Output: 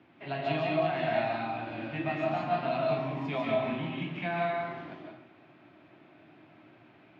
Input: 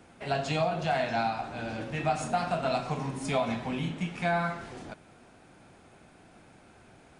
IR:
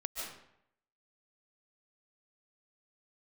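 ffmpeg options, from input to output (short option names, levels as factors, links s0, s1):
-filter_complex "[0:a]highpass=f=110:w=0.5412,highpass=f=110:w=1.3066,equalizer=f=200:t=q:w=4:g=-8,equalizer=f=310:t=q:w=4:g=5,equalizer=f=480:t=q:w=4:g=-9,equalizer=f=780:t=q:w=4:g=-5,equalizer=f=1400:t=q:w=4:g=-6,lowpass=f=3300:w=0.5412,lowpass=f=3300:w=1.3066[s0];[1:a]atrim=start_sample=2205[s1];[s0][s1]afir=irnorm=-1:irlink=0"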